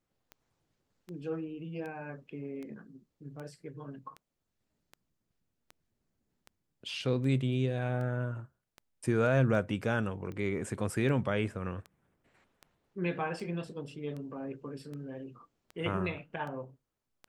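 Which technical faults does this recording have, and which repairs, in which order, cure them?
scratch tick 78 rpm −31 dBFS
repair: click removal

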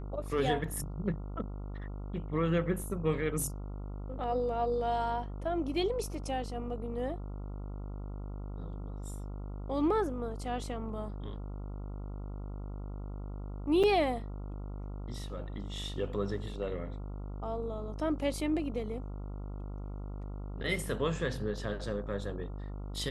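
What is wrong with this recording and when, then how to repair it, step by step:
mains buzz 50 Hz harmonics 28 −40 dBFS
0:13.83–0:13.84: drop-out 6 ms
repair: hum removal 50 Hz, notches 28
repair the gap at 0:13.83, 6 ms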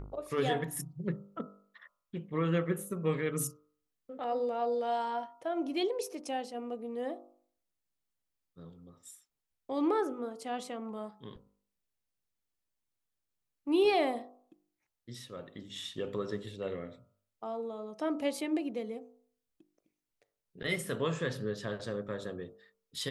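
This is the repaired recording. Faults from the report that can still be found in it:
none of them is left

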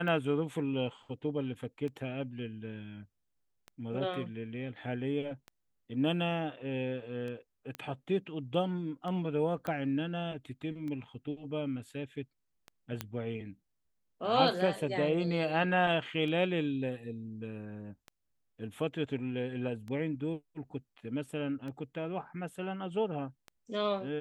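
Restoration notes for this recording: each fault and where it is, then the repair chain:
scratch tick 33 1/3 rpm −30 dBFS
0:07.75: click −24 dBFS
0:09.67: click −23 dBFS
0:13.01: click −18 dBFS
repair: click removal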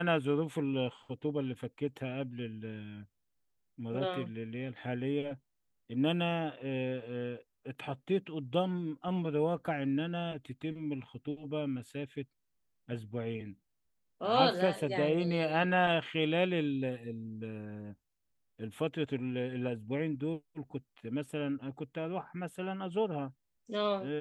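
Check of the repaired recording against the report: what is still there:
0:09.67: click
0:13.01: click

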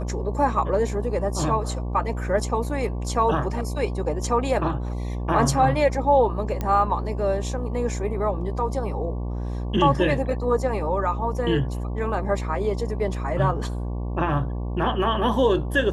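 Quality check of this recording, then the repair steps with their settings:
mains buzz 60 Hz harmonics 19 −28 dBFS
0:06.61: click −14 dBFS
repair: click removal
hum removal 60 Hz, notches 19

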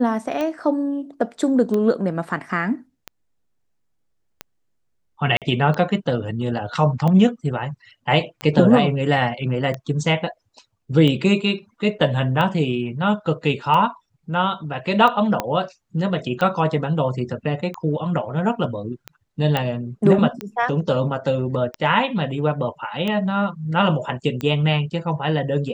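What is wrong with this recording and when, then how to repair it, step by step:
scratch tick 45 rpm −13 dBFS
0:05.37–0:05.42: drop-out 47 ms
0:15.40: click −7 dBFS
0:19.57: click −8 dBFS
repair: click removal
repair the gap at 0:05.37, 47 ms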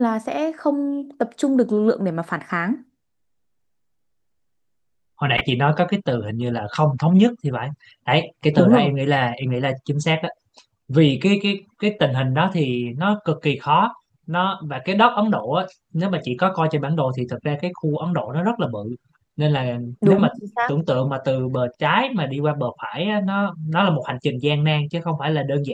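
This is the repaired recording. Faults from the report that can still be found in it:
0:15.40: click

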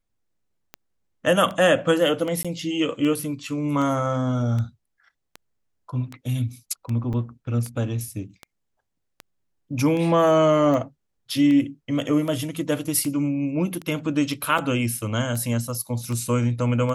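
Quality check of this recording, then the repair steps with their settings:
scratch tick 78 rpm −19 dBFS
0:02.43–0:02.45: drop-out 16 ms
0:07.13–0:07.14: drop-out 7 ms
0:14.58: drop-out 4.4 ms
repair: click removal
repair the gap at 0:02.43, 16 ms
repair the gap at 0:07.13, 7 ms
repair the gap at 0:14.58, 4.4 ms

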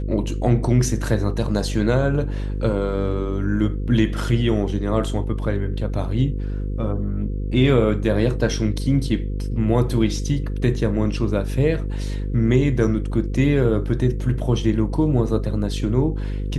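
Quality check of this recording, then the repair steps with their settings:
mains buzz 50 Hz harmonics 10 −25 dBFS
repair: hum removal 50 Hz, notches 10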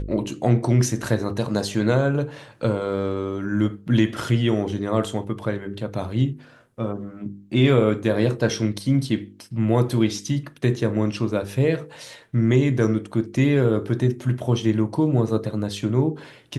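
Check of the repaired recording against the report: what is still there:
none of them is left

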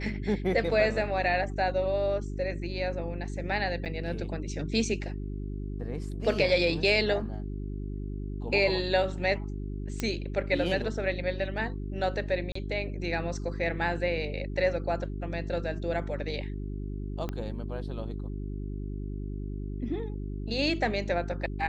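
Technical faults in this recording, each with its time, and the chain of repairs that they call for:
mains hum 50 Hz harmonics 8 −35 dBFS
0:03.85–0:03.86: drop-out 8.3 ms
0:10.00: click −15 dBFS
0:12.52–0:12.55: drop-out 34 ms
0:17.29: click −20 dBFS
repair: click removal
hum removal 50 Hz, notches 8
repair the gap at 0:03.85, 8.3 ms
repair the gap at 0:12.52, 34 ms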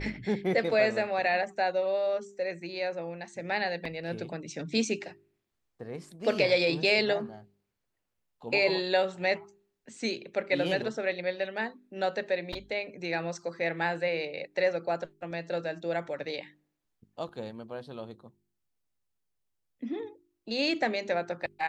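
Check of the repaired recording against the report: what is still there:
0:17.29: click

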